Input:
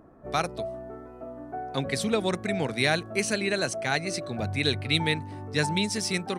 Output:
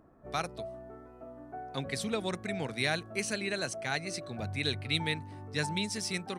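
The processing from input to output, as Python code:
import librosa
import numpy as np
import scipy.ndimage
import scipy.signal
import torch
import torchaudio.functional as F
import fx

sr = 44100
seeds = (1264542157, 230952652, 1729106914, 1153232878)

y = fx.peak_eq(x, sr, hz=400.0, db=-2.5, octaves=2.4)
y = F.gain(torch.from_numpy(y), -5.5).numpy()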